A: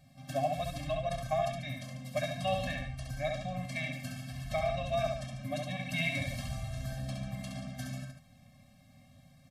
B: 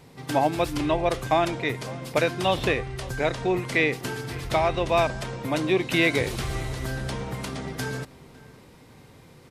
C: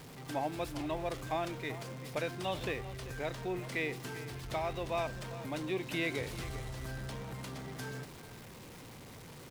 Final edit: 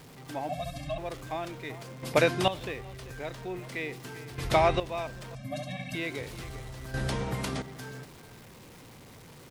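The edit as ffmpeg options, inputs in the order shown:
-filter_complex "[0:a]asplit=2[a][b];[1:a]asplit=3[c][d][e];[2:a]asplit=6[f][g][h][i][j][k];[f]atrim=end=0.492[l];[a]atrim=start=0.488:end=0.982[m];[g]atrim=start=0.978:end=2.032[n];[c]atrim=start=2.028:end=2.482[o];[h]atrim=start=2.478:end=4.382[p];[d]atrim=start=4.378:end=4.802[q];[i]atrim=start=4.798:end=5.352[r];[b]atrim=start=5.348:end=5.952[s];[j]atrim=start=5.948:end=6.942[t];[e]atrim=start=6.938:end=7.622[u];[k]atrim=start=7.618[v];[l][m]acrossfade=d=0.004:c1=hsin:c2=hsin[w];[w][n]acrossfade=d=0.004:c1=hsin:c2=hsin[x];[x][o]acrossfade=d=0.004:c1=hsin:c2=hsin[y];[y][p]acrossfade=d=0.004:c1=hsin:c2=hsin[z];[z][q]acrossfade=d=0.004:c1=hsin:c2=hsin[aa];[aa][r]acrossfade=d=0.004:c1=hsin:c2=hsin[ab];[ab][s]acrossfade=d=0.004:c1=hsin:c2=hsin[ac];[ac][t]acrossfade=d=0.004:c1=hsin:c2=hsin[ad];[ad][u]acrossfade=d=0.004:c1=hsin:c2=hsin[ae];[ae][v]acrossfade=d=0.004:c1=hsin:c2=hsin"

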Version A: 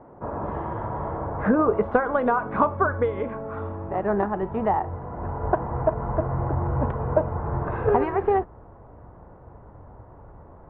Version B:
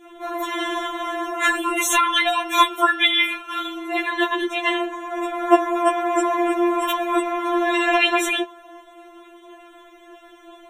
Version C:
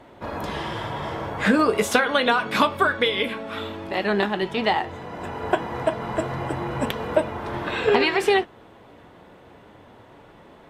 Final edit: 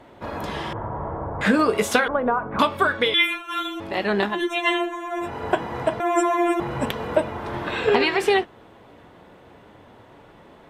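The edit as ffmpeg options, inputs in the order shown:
-filter_complex "[0:a]asplit=2[a][b];[1:a]asplit=3[c][d][e];[2:a]asplit=6[f][g][h][i][j][k];[f]atrim=end=0.732[l];[a]atrim=start=0.728:end=1.412[m];[g]atrim=start=1.408:end=2.082[n];[b]atrim=start=2.078:end=2.592[o];[h]atrim=start=2.588:end=3.142[p];[c]atrim=start=3.138:end=3.802[q];[i]atrim=start=3.798:end=4.42[r];[d]atrim=start=4.26:end=5.33[s];[j]atrim=start=5.17:end=6.002[t];[e]atrim=start=5.998:end=6.602[u];[k]atrim=start=6.598[v];[l][m]acrossfade=d=0.004:c1=hsin:c2=hsin[w];[w][n]acrossfade=d=0.004:c1=hsin:c2=hsin[x];[x][o]acrossfade=d=0.004:c1=hsin:c2=hsin[y];[y][p]acrossfade=d=0.004:c1=hsin:c2=hsin[z];[z][q]acrossfade=d=0.004:c1=hsin:c2=hsin[aa];[aa][r]acrossfade=d=0.004:c1=hsin:c2=hsin[ab];[ab][s]acrossfade=d=0.16:c1=tri:c2=tri[ac];[ac][t]acrossfade=d=0.16:c1=tri:c2=tri[ad];[ad][u]acrossfade=d=0.004:c1=hsin:c2=hsin[ae];[ae][v]acrossfade=d=0.004:c1=hsin:c2=hsin"

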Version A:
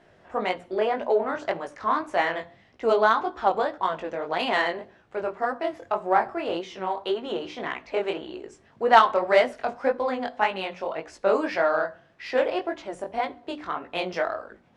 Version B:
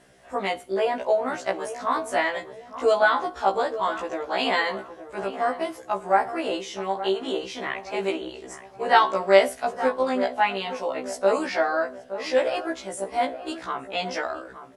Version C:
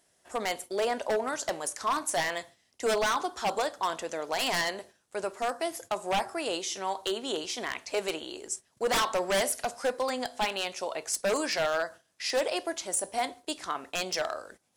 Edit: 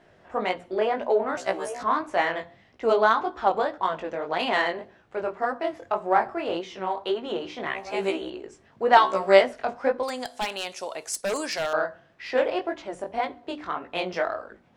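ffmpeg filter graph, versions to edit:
-filter_complex "[1:a]asplit=3[a][b][c];[0:a]asplit=5[d][e][f][g][h];[d]atrim=end=1.372[i];[a]atrim=start=1.368:end=1.832[j];[e]atrim=start=1.828:end=7.672[k];[b]atrim=start=7.668:end=8.302[l];[f]atrim=start=8.298:end=8.972[m];[c]atrim=start=8.968:end=9.412[n];[g]atrim=start=9.408:end=10.032[o];[2:a]atrim=start=10.028:end=11.732[p];[h]atrim=start=11.728[q];[i][j]acrossfade=d=0.004:c1=hsin:c2=hsin[r];[r][k]acrossfade=d=0.004:c1=hsin:c2=hsin[s];[s][l]acrossfade=d=0.004:c1=hsin:c2=hsin[t];[t][m]acrossfade=d=0.004:c1=hsin:c2=hsin[u];[u][n]acrossfade=d=0.004:c1=hsin:c2=hsin[v];[v][o]acrossfade=d=0.004:c1=hsin:c2=hsin[w];[w][p]acrossfade=d=0.004:c1=hsin:c2=hsin[x];[x][q]acrossfade=d=0.004:c1=hsin:c2=hsin"

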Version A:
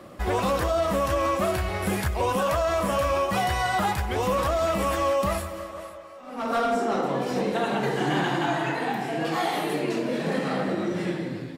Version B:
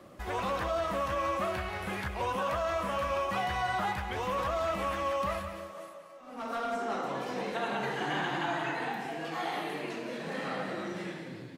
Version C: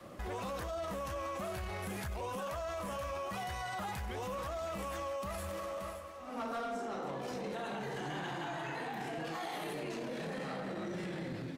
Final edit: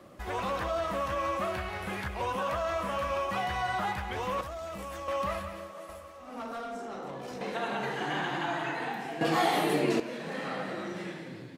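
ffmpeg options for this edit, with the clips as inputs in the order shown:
-filter_complex "[2:a]asplit=2[a][b];[1:a]asplit=4[c][d][e][f];[c]atrim=end=4.412[g];[a]atrim=start=4.408:end=5.082[h];[d]atrim=start=5.078:end=5.892[i];[b]atrim=start=5.888:end=7.412[j];[e]atrim=start=7.408:end=9.212[k];[0:a]atrim=start=9.208:end=10.002[l];[f]atrim=start=9.998[m];[g][h]acrossfade=d=0.004:c1=hsin:c2=hsin[n];[n][i]acrossfade=d=0.004:c1=hsin:c2=hsin[o];[o][j]acrossfade=d=0.004:c1=hsin:c2=hsin[p];[p][k]acrossfade=d=0.004:c1=hsin:c2=hsin[q];[q][l]acrossfade=d=0.004:c1=hsin:c2=hsin[r];[r][m]acrossfade=d=0.004:c1=hsin:c2=hsin"

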